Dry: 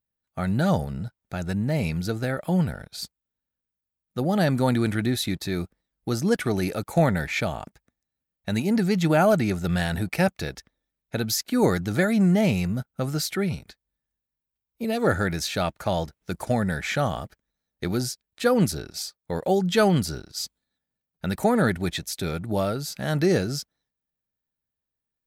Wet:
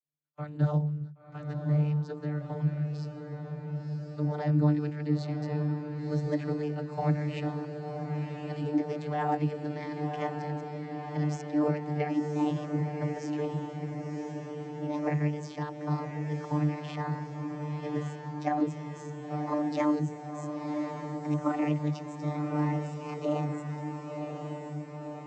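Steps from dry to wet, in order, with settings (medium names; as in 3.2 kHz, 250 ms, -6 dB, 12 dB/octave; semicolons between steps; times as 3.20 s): pitch bend over the whole clip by +8 st starting unshifted; vocoder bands 32, saw 149 Hz; echo that smears into a reverb 1049 ms, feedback 64%, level -5.5 dB; trim -5 dB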